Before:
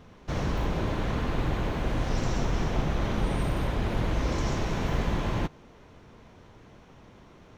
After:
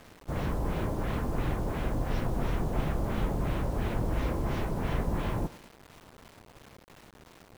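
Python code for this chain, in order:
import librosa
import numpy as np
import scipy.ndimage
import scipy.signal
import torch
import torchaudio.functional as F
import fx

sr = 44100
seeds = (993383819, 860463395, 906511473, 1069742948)

y = fx.echo_thinned(x, sr, ms=97, feedback_pct=44, hz=150.0, wet_db=-17.0)
y = fx.filter_lfo_lowpass(y, sr, shape='sine', hz=2.9, low_hz=780.0, high_hz=4000.0, q=0.84)
y = fx.quant_dither(y, sr, seeds[0], bits=8, dither='none')
y = F.gain(torch.from_numpy(y), -2.5).numpy()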